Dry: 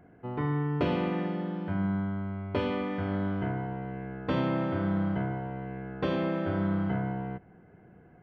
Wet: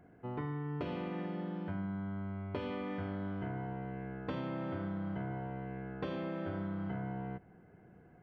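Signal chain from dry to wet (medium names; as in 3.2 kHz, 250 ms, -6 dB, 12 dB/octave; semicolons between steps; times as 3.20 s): compression, threshold -31 dBFS, peak gain reduction 8.5 dB; trim -4 dB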